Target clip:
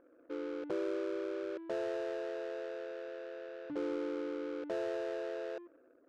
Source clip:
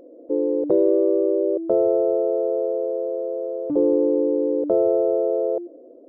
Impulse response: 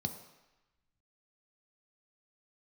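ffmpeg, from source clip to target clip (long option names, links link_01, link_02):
-af "lowpass=frequency=1200:poles=1,adynamicsmooth=sensitivity=6:basefreq=760,lowshelf=frequency=790:width_type=q:width=1.5:gain=-10,volume=-6dB"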